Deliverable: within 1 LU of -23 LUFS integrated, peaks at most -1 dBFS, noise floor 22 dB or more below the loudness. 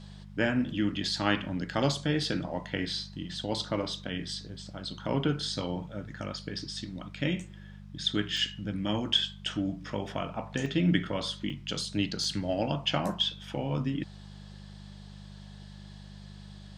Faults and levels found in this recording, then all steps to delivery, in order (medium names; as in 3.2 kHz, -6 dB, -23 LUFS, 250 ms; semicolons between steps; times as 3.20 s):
dropouts 5; longest dropout 2.3 ms; hum 50 Hz; highest harmonic 200 Hz; hum level -44 dBFS; loudness -31.5 LUFS; peak level -10.0 dBFS; loudness target -23.0 LUFS
-> interpolate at 6.59/8.37/10.66/11.50/12.24 s, 2.3 ms; de-hum 50 Hz, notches 4; trim +8.5 dB